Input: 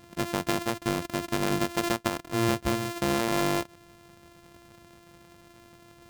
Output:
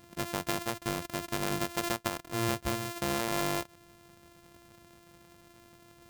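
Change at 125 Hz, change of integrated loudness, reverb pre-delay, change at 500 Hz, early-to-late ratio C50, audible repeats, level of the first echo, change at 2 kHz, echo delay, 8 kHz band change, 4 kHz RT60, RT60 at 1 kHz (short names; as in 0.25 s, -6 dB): -5.0 dB, -4.5 dB, none, -5.5 dB, none, none, none, -4.0 dB, none, -1.5 dB, none, none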